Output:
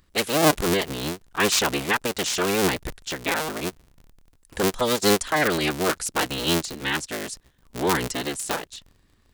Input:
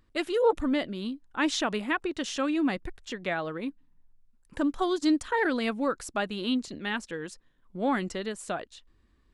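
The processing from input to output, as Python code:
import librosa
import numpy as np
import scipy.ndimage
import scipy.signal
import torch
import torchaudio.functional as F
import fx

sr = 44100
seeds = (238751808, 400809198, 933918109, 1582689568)

y = fx.cycle_switch(x, sr, every=3, mode='inverted')
y = fx.high_shelf(y, sr, hz=3200.0, db=10.0)
y = y * 10.0 ** (3.5 / 20.0)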